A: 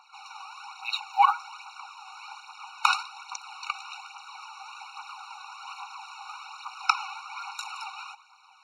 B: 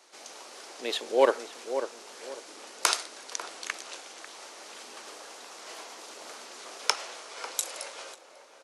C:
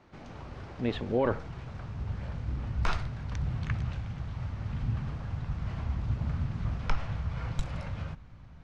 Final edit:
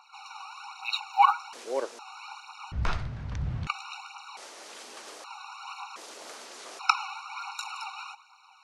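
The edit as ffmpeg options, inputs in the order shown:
-filter_complex "[1:a]asplit=3[s0][s1][s2];[0:a]asplit=5[s3][s4][s5][s6][s7];[s3]atrim=end=1.532[s8];[s0]atrim=start=1.528:end=1.992[s9];[s4]atrim=start=1.988:end=2.722[s10];[2:a]atrim=start=2.718:end=3.672[s11];[s5]atrim=start=3.668:end=4.372[s12];[s1]atrim=start=4.368:end=5.242[s13];[s6]atrim=start=5.238:end=5.962[s14];[s2]atrim=start=5.958:end=6.792[s15];[s7]atrim=start=6.788[s16];[s8][s9]acrossfade=d=0.004:c1=hsin:c2=hsin[s17];[s17][s10]acrossfade=d=0.004:c1=hsin:c2=hsin[s18];[s18][s11]acrossfade=d=0.004:c1=hsin:c2=hsin[s19];[s19][s12]acrossfade=d=0.004:c1=hsin:c2=hsin[s20];[s20][s13]acrossfade=d=0.004:c1=hsin:c2=hsin[s21];[s21][s14]acrossfade=d=0.004:c1=hsin:c2=hsin[s22];[s22][s15]acrossfade=d=0.004:c1=hsin:c2=hsin[s23];[s23][s16]acrossfade=d=0.004:c1=hsin:c2=hsin"

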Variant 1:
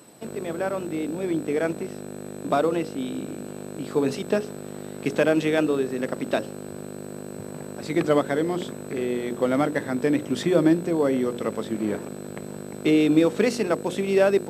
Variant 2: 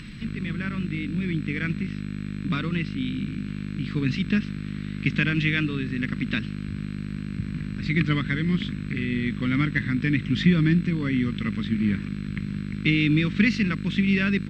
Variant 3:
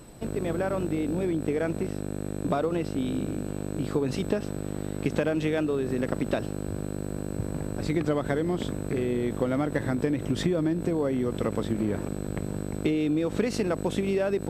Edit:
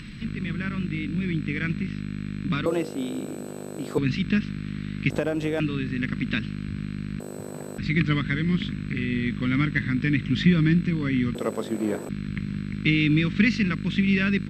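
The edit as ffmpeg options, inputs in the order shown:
-filter_complex "[0:a]asplit=3[s0][s1][s2];[1:a]asplit=5[s3][s4][s5][s6][s7];[s3]atrim=end=2.662[s8];[s0]atrim=start=2.658:end=3.982[s9];[s4]atrim=start=3.978:end=5.102[s10];[2:a]atrim=start=5.098:end=5.602[s11];[s5]atrim=start=5.598:end=7.202[s12];[s1]atrim=start=7.198:end=7.782[s13];[s6]atrim=start=7.778:end=11.352[s14];[s2]atrim=start=11.348:end=12.092[s15];[s7]atrim=start=12.088[s16];[s8][s9]acrossfade=d=0.004:c1=hsin:c2=hsin[s17];[s17][s10]acrossfade=d=0.004:c1=hsin:c2=hsin[s18];[s18][s11]acrossfade=d=0.004:c1=hsin:c2=hsin[s19];[s19][s12]acrossfade=d=0.004:c1=hsin:c2=hsin[s20];[s20][s13]acrossfade=d=0.004:c1=hsin:c2=hsin[s21];[s21][s14]acrossfade=d=0.004:c1=hsin:c2=hsin[s22];[s22][s15]acrossfade=d=0.004:c1=hsin:c2=hsin[s23];[s23][s16]acrossfade=d=0.004:c1=hsin:c2=hsin"

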